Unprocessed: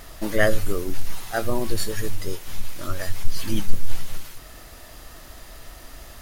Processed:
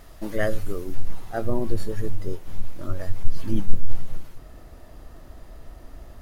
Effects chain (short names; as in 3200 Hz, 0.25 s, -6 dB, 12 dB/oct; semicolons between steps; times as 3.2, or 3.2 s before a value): tilt shelf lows +3.5 dB, about 1200 Hz, from 0.94 s lows +8.5 dB; gain -7 dB